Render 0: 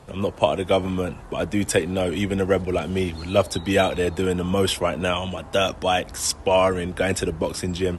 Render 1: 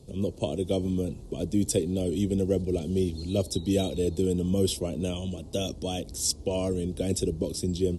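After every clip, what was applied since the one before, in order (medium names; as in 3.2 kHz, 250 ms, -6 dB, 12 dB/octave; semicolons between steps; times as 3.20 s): FFT filter 400 Hz 0 dB, 750 Hz -15 dB, 1.6 kHz -28 dB, 4.1 kHz -1 dB; trim -2 dB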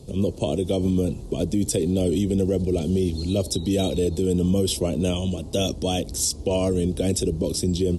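peak limiter -20.5 dBFS, peak gain reduction 9 dB; trim +7.5 dB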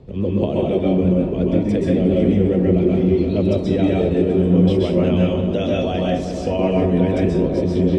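resonant low-pass 1.9 kHz, resonance Q 2.6; tape echo 355 ms, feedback 81%, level -6.5 dB, low-pass 1.3 kHz; reverberation RT60 0.45 s, pre-delay 117 ms, DRR -3 dB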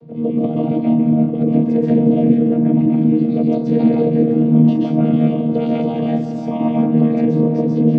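vocoder on a held chord bare fifth, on D#3; trim +3.5 dB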